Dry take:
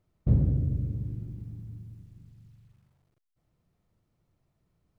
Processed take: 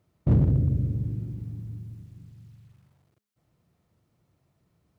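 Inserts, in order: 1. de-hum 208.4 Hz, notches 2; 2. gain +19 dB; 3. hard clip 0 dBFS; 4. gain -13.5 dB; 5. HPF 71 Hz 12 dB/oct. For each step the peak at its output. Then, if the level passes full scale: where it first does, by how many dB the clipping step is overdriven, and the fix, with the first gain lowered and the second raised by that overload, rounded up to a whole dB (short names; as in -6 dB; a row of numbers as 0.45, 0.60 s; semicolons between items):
-12.0, +7.0, 0.0, -13.5, -10.0 dBFS; step 2, 7.0 dB; step 2 +12 dB, step 4 -6.5 dB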